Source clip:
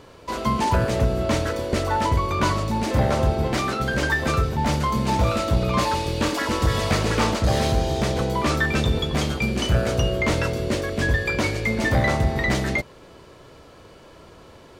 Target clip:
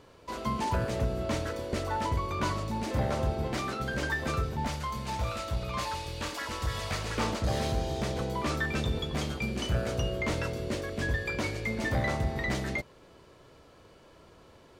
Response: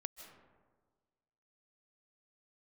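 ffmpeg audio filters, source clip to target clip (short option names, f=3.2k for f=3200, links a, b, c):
-filter_complex "[0:a]asettb=1/sr,asplit=3[a][b][c];[a]atrim=end=4.674[d];[b]atrim=start=4.67:end=7.18,asetpts=PTS-STARTPTS,afade=t=in:d=0.004:c=qsin,afade=t=out:st=2.506:d=0.004:c=qsin,equalizer=f=270:t=o:w=2.2:g=-9[e];[c]atrim=start=7.176[f];[d][e]acrossfade=d=0.004:c1=hsin:c2=qsin[g];[g][f]acrossfade=d=0.004:c1=qsin:c2=hsin,volume=-9dB"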